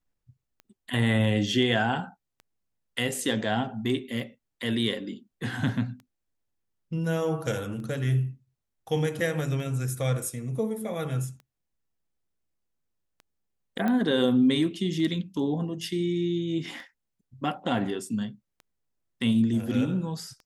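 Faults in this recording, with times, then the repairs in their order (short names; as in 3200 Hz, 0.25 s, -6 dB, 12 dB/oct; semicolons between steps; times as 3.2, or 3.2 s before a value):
tick 33 1/3 rpm -32 dBFS
13.88 pop -17 dBFS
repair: de-click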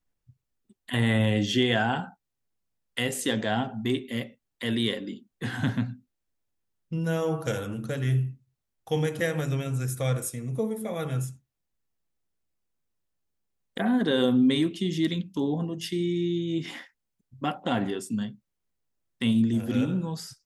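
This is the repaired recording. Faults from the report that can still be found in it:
none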